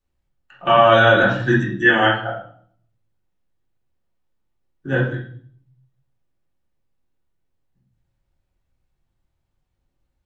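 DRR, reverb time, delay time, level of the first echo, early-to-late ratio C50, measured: -8.5 dB, 0.55 s, no echo, no echo, 5.0 dB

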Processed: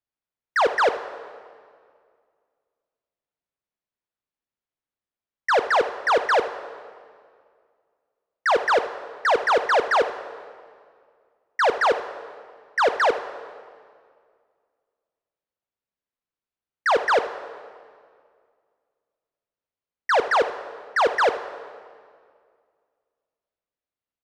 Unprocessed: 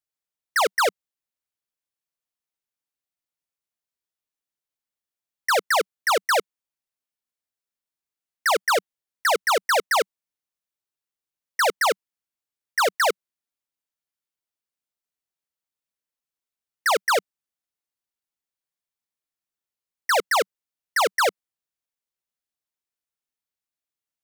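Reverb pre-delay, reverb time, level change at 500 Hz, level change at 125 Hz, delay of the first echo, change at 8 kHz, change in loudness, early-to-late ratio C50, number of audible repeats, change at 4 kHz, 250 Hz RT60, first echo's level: 10 ms, 2.1 s, +3.0 dB, no reading, 79 ms, -13.0 dB, +0.5 dB, 10.5 dB, 1, -5.0 dB, 2.2 s, -15.0 dB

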